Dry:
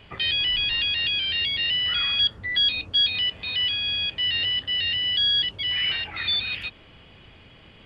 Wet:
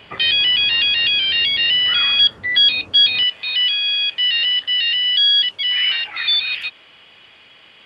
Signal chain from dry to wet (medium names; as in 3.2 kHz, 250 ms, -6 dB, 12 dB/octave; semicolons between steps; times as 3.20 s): high-pass 280 Hz 6 dB/octave, from 3.23 s 1.4 kHz; trim +8 dB